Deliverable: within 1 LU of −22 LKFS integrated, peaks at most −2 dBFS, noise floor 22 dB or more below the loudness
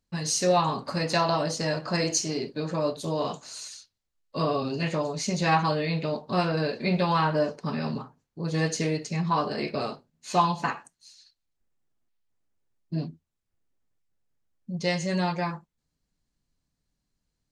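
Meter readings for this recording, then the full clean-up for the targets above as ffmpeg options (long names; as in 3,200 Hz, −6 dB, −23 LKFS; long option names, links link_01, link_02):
integrated loudness −27.5 LKFS; sample peak −10.0 dBFS; target loudness −22.0 LKFS
→ -af "volume=5.5dB"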